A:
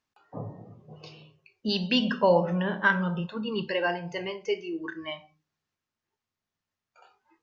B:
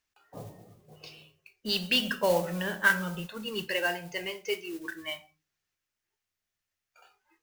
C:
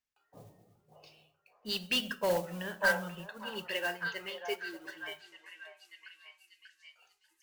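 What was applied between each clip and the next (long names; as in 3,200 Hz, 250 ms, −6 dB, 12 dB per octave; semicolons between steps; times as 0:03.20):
octave-band graphic EQ 125/250/500/1,000/4,000 Hz −12/−10/−5/−10/−4 dB; noise that follows the level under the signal 16 dB; level +5 dB
hard clipping −20.5 dBFS, distortion −14 dB; echo through a band-pass that steps 590 ms, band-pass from 790 Hz, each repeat 0.7 octaves, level −1.5 dB; expander for the loud parts 1.5 to 1, over −39 dBFS; level −2 dB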